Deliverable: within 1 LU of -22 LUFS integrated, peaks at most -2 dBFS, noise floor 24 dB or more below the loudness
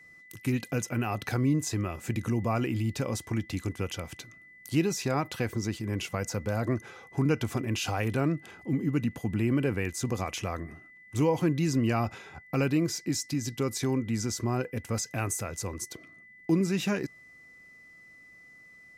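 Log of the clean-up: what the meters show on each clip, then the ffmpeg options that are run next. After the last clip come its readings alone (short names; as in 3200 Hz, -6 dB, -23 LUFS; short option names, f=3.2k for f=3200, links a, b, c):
steady tone 2000 Hz; tone level -51 dBFS; loudness -30.5 LUFS; peak -14.0 dBFS; loudness target -22.0 LUFS
-> -af "bandreject=f=2k:w=30"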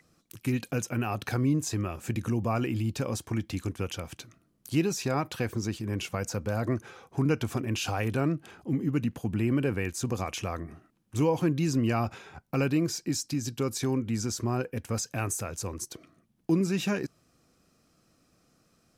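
steady tone none; loudness -30.5 LUFS; peak -14.0 dBFS; loudness target -22.0 LUFS
-> -af "volume=8.5dB"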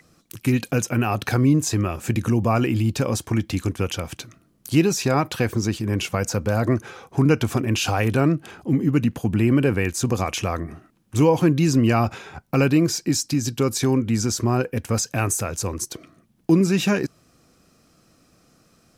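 loudness -22.0 LUFS; peak -5.5 dBFS; noise floor -60 dBFS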